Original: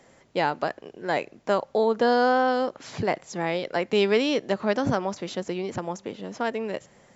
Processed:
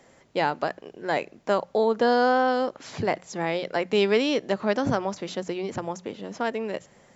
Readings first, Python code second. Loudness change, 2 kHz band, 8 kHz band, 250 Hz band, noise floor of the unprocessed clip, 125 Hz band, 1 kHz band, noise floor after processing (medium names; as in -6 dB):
0.0 dB, 0.0 dB, no reading, 0.0 dB, -57 dBFS, -1.0 dB, 0.0 dB, -57 dBFS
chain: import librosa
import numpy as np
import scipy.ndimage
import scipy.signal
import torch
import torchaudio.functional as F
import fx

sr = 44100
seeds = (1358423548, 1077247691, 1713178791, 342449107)

y = fx.hum_notches(x, sr, base_hz=60, count=3)